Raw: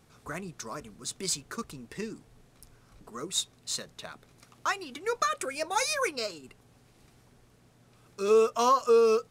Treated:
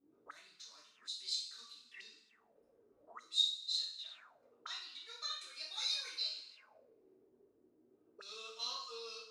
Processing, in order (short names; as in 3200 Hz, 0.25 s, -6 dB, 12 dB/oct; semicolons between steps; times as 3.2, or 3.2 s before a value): two-slope reverb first 0.58 s, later 1.8 s, from -17 dB, DRR -9 dB; auto-wah 270–4000 Hz, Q 7, up, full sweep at -29 dBFS; gain -6 dB